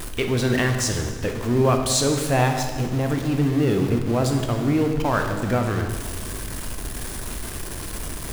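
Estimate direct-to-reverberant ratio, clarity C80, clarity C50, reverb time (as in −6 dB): 4.0 dB, 7.5 dB, 6.0 dB, 1.6 s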